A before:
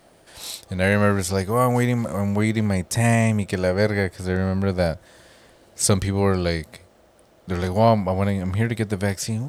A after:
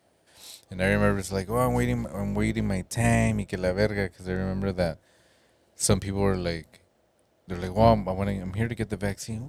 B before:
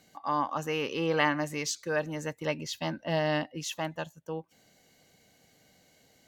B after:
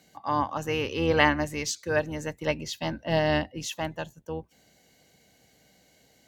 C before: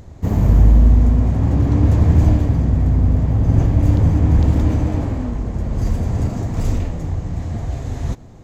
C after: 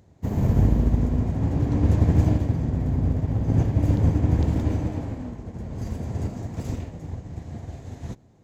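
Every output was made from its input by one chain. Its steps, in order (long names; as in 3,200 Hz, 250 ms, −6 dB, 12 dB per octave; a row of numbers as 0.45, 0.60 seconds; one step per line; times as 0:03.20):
sub-octave generator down 2 octaves, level −2 dB
high-pass filter 83 Hz 12 dB per octave
parametric band 1,200 Hz −4 dB 0.27 octaves
expander for the loud parts 1.5 to 1, over −32 dBFS
normalise the peak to −6 dBFS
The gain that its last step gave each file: −1.5, +6.0, −3.0 decibels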